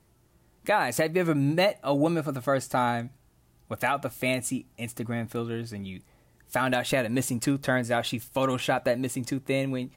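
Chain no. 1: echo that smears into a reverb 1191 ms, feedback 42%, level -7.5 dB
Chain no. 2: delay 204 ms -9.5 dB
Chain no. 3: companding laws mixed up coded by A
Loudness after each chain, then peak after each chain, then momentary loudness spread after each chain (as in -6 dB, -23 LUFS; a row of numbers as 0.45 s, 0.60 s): -27.0 LUFS, -27.0 LUFS, -28.0 LUFS; -12.0 dBFS, -12.5 dBFS, -14.0 dBFS; 9 LU, 11 LU, 10 LU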